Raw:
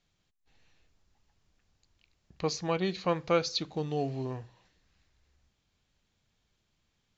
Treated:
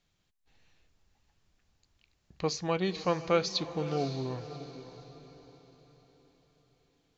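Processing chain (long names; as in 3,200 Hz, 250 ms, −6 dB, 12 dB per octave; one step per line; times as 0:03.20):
feedback delay with all-pass diffusion 567 ms, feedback 41%, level −12.5 dB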